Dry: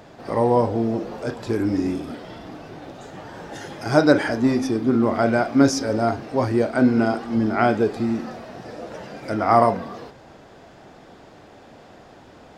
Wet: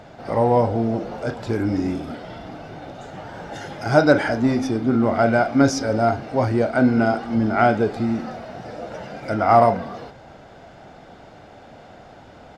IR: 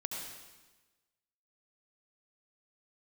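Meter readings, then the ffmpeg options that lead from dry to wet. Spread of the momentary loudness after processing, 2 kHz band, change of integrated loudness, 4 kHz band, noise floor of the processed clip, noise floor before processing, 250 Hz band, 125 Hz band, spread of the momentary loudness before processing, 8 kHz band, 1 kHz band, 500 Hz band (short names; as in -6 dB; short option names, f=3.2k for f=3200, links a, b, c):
19 LU, +2.5 dB, +1.0 dB, -0.5 dB, -45 dBFS, -47 dBFS, 0.0 dB, +3.0 dB, 20 LU, -1.5 dB, +2.5 dB, +1.5 dB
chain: -filter_complex "[0:a]highshelf=f=7.1k:g=-9,aecho=1:1:1.4:0.31,asplit=2[a][b];[b]asoftclip=type=tanh:threshold=-18.5dB,volume=-12dB[c];[a][c]amix=inputs=2:normalize=0"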